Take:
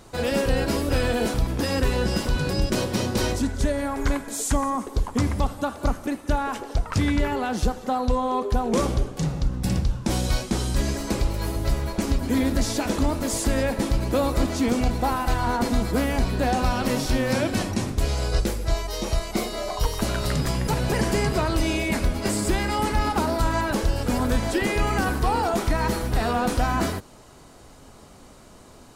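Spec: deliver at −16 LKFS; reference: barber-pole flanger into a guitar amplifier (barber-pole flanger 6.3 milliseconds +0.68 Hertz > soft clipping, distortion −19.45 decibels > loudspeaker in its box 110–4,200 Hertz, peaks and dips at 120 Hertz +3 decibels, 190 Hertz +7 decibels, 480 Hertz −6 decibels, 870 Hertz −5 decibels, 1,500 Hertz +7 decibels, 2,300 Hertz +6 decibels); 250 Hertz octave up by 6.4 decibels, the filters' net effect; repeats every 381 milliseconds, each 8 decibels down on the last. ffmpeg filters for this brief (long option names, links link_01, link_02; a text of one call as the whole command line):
ffmpeg -i in.wav -filter_complex "[0:a]equalizer=frequency=250:width_type=o:gain=5.5,aecho=1:1:381|762|1143|1524|1905:0.398|0.159|0.0637|0.0255|0.0102,asplit=2[link_01][link_02];[link_02]adelay=6.3,afreqshift=0.68[link_03];[link_01][link_03]amix=inputs=2:normalize=1,asoftclip=threshold=-15dB,highpass=110,equalizer=frequency=120:width_type=q:width=4:gain=3,equalizer=frequency=190:width_type=q:width=4:gain=7,equalizer=frequency=480:width_type=q:width=4:gain=-6,equalizer=frequency=870:width_type=q:width=4:gain=-5,equalizer=frequency=1500:width_type=q:width=4:gain=7,equalizer=frequency=2300:width_type=q:width=4:gain=6,lowpass=frequency=4200:width=0.5412,lowpass=frequency=4200:width=1.3066,volume=9.5dB" out.wav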